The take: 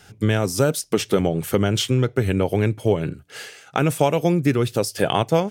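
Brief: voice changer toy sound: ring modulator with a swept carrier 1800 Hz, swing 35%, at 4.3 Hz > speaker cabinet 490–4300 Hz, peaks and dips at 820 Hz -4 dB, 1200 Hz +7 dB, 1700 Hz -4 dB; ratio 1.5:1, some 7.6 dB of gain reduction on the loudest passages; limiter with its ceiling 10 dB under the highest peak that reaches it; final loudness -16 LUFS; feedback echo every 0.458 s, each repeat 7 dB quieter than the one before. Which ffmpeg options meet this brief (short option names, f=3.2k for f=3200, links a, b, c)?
-af "acompressor=threshold=-35dB:ratio=1.5,alimiter=limit=-21.5dB:level=0:latency=1,aecho=1:1:458|916|1374|1832|2290:0.447|0.201|0.0905|0.0407|0.0183,aeval=exprs='val(0)*sin(2*PI*1800*n/s+1800*0.35/4.3*sin(2*PI*4.3*n/s))':c=same,highpass=490,equalizer=f=820:t=q:w=4:g=-4,equalizer=f=1.2k:t=q:w=4:g=7,equalizer=f=1.7k:t=q:w=4:g=-4,lowpass=f=4.3k:w=0.5412,lowpass=f=4.3k:w=1.3066,volume=16.5dB"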